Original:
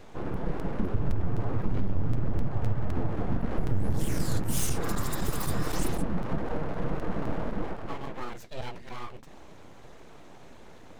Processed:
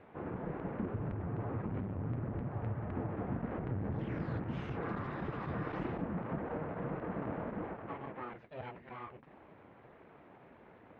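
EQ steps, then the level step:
high-pass filter 70 Hz
low-pass filter 2,400 Hz 24 dB per octave
low-shelf EQ 92 Hz −5 dB
−5.0 dB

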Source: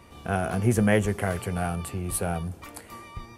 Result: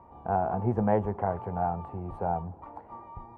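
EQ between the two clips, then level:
low-pass with resonance 880 Hz, resonance Q 5.9
−6.0 dB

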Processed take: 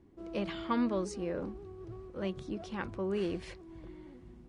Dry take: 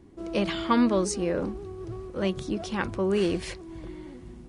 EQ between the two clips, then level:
low-pass filter 3,500 Hz 6 dB per octave
−8.5 dB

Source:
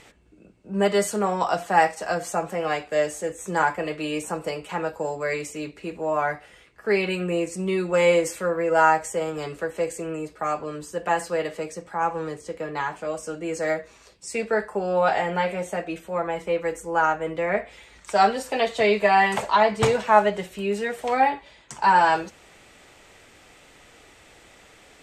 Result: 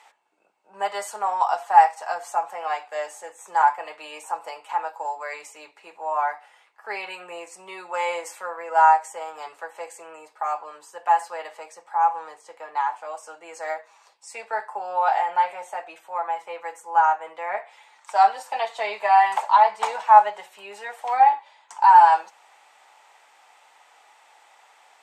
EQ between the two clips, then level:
high-pass with resonance 860 Hz, resonance Q 4.9
−6.5 dB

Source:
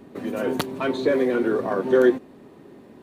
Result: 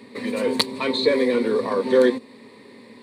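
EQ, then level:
meter weighting curve D
dynamic equaliser 2,000 Hz, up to −6 dB, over −37 dBFS, Q 1.4
EQ curve with evenly spaced ripples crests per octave 0.95, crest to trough 12 dB
0.0 dB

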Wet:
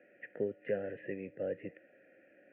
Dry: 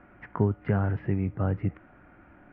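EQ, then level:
formant filter e
high-pass filter 150 Hz 12 dB per octave
phaser with its sweep stopped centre 2,500 Hz, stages 4
+8.5 dB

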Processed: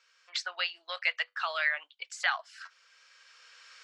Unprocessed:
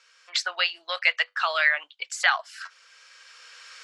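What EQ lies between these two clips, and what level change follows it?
high-pass filter 340 Hz 12 dB per octave
low-pass filter 7,700 Hz 12 dB per octave
−7.5 dB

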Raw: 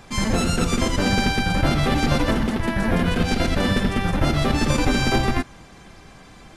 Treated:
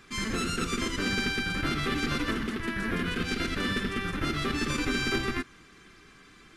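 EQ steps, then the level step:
bass and treble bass −10 dB, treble −4 dB
flat-topped bell 700 Hz −14 dB 1.1 octaves
−4.0 dB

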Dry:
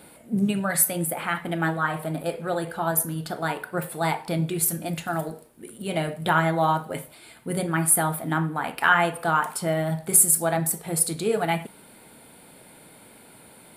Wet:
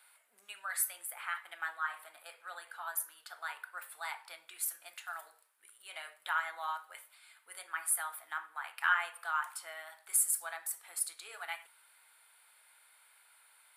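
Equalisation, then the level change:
four-pole ladder high-pass 990 Hz, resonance 30%
−5.5 dB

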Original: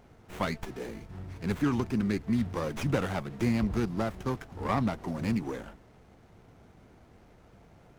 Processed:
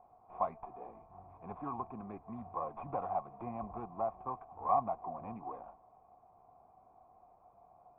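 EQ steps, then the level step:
formant resonators in series a
+8.5 dB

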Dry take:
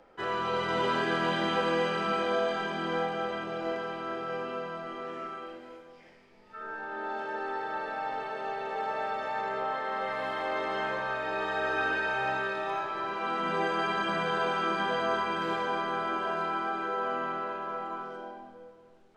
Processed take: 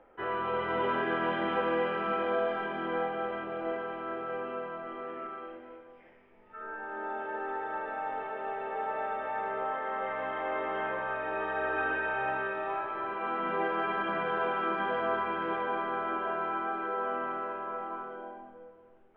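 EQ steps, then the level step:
Savitzky-Golay smoothing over 25 samples
high-frequency loss of the air 240 metres
parametric band 160 Hz −8 dB 0.61 octaves
0.0 dB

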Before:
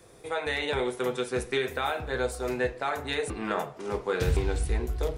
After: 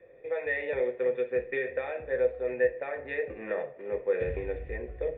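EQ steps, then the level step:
formant resonators in series e
high-frequency loss of the air 110 metres
high-shelf EQ 3,500 Hz +10 dB
+8.0 dB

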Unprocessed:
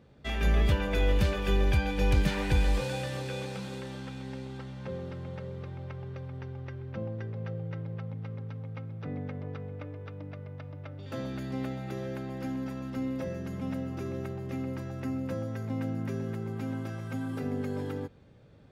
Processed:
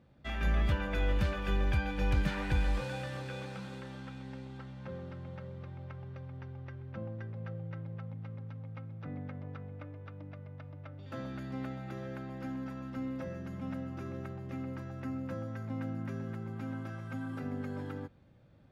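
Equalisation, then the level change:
parametric band 430 Hz −11 dB 0.21 octaves
high-shelf EQ 4,400 Hz −7 dB
dynamic equaliser 1,400 Hz, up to +5 dB, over −54 dBFS, Q 2
−4.5 dB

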